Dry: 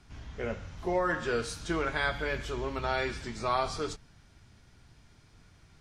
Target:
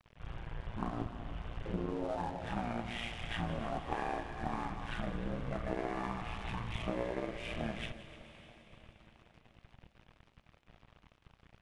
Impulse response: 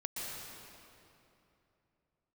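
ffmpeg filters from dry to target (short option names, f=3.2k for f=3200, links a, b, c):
-filter_complex "[0:a]equalizer=f=490:t=o:w=0.69:g=-4.5,bandreject=f=60:t=h:w=6,bandreject=f=120:t=h:w=6,bandreject=f=180:t=h:w=6,bandreject=f=240:t=h:w=6,bandreject=f=300:t=h:w=6,bandreject=f=360:t=h:w=6,bandreject=f=420:t=h:w=6,bandreject=f=480:t=h:w=6,bandreject=f=540:t=h:w=6,acompressor=threshold=-37dB:ratio=10,aresample=16000,aeval=exprs='clip(val(0),-1,0.01)':c=same,aresample=44100,tremolo=f=230:d=0.667,aeval=exprs='sgn(val(0))*max(abs(val(0))-0.00119,0)':c=same,aecho=1:1:151|302|453|604|755:0.158|0.0856|0.0462|0.025|0.0135,asplit=2[a][b];[1:a]atrim=start_sample=2205,highshelf=f=2.8k:g=11.5,adelay=86[c];[b][c]afir=irnorm=-1:irlink=0,volume=-22dB[d];[a][d]amix=inputs=2:normalize=0,asetrate=22050,aresample=44100,volume=8.5dB"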